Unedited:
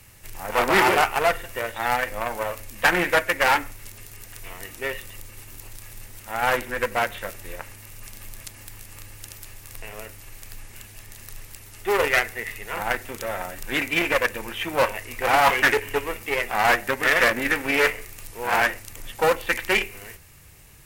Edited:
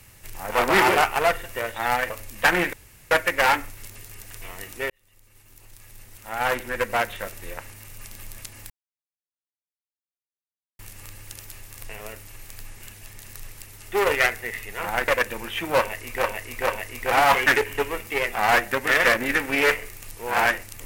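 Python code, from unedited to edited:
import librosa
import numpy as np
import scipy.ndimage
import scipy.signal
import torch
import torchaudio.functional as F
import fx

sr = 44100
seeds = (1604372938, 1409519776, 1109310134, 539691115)

y = fx.edit(x, sr, fx.cut(start_s=2.1, length_s=0.4),
    fx.insert_room_tone(at_s=3.13, length_s=0.38),
    fx.fade_in_span(start_s=4.92, length_s=1.98),
    fx.insert_silence(at_s=8.72, length_s=2.09),
    fx.cut(start_s=13.01, length_s=1.11),
    fx.repeat(start_s=14.84, length_s=0.44, count=3), tone=tone)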